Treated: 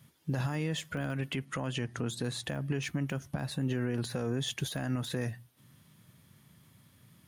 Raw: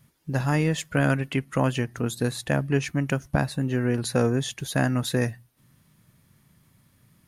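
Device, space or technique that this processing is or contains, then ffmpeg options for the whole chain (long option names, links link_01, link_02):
broadcast voice chain: -filter_complex "[0:a]asettb=1/sr,asplit=3[link_01][link_02][link_03];[link_01]atrim=end=1.454[link_04];[link_02]atrim=start=1.45:end=2.44,asetpts=PTS-STARTPTS,afade=type=in:duration=0.004:curve=qsin,afade=type=out:start_time=0.986:duration=0.004:curve=qsin,lowpass=frequency=10000:width=0.5412,lowpass=frequency=10000:width=1.3066[link_05];[link_03]atrim=start=2.436[link_06];[link_04][link_05]acrossfade=duration=0.004:curve1=hsin:curve2=qsin[link_07];[link_07][link_06]acrossfade=duration=0.004:curve1=qsin:curve2=hsin,highpass=frequency=70:width=0.5412,highpass=frequency=70:width=1.3066,deesser=0.75,acompressor=threshold=-25dB:ratio=5,equalizer=frequency=3300:width_type=o:width=0.35:gain=5,alimiter=limit=-23.5dB:level=0:latency=1:release=30"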